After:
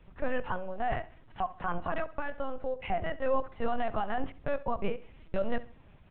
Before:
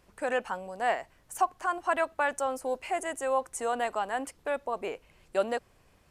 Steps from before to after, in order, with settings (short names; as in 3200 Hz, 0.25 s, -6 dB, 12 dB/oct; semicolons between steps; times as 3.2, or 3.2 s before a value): LPC vocoder at 8 kHz pitch kept; limiter -22.5 dBFS, peak gain reduction 10 dB; low shelf 210 Hz +11 dB; on a send: feedback echo 67 ms, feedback 34%, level -17.5 dB; 2–2.85 on the sum: compressor, threshold -28 dBFS, peak gain reduction 6 dB